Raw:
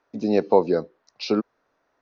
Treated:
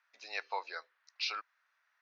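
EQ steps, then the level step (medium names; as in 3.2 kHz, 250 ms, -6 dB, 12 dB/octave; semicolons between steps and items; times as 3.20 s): ladder high-pass 1.4 kHz, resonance 25%; treble shelf 2.3 kHz -9.5 dB; +9.5 dB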